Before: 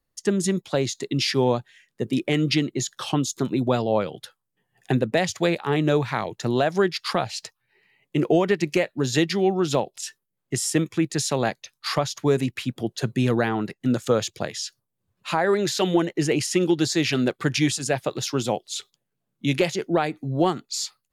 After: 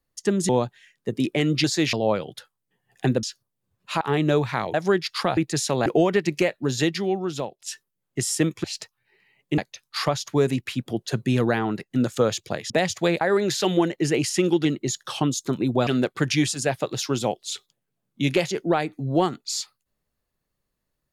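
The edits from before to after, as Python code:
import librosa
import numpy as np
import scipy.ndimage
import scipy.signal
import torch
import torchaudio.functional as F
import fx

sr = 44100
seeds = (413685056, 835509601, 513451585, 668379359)

y = fx.edit(x, sr, fx.cut(start_s=0.49, length_s=0.93),
    fx.swap(start_s=2.57, length_s=1.22, other_s=16.82, other_length_s=0.29),
    fx.swap(start_s=5.09, length_s=0.51, other_s=14.6, other_length_s=0.78),
    fx.cut(start_s=6.33, length_s=0.31),
    fx.swap(start_s=7.27, length_s=0.94, other_s=10.99, other_length_s=0.49),
    fx.fade_out_to(start_s=8.95, length_s=1.06, floor_db=-11.0), tone=tone)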